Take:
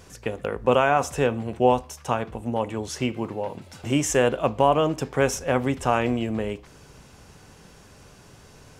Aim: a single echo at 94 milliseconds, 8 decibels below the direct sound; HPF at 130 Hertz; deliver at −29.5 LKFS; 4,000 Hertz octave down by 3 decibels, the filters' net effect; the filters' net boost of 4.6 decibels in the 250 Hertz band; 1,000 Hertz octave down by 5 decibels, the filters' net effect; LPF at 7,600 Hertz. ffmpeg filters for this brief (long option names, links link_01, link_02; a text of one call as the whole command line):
ffmpeg -i in.wav -af "highpass=130,lowpass=7600,equalizer=frequency=250:width_type=o:gain=6,equalizer=frequency=1000:width_type=o:gain=-7.5,equalizer=frequency=4000:width_type=o:gain=-4,aecho=1:1:94:0.398,volume=-6dB" out.wav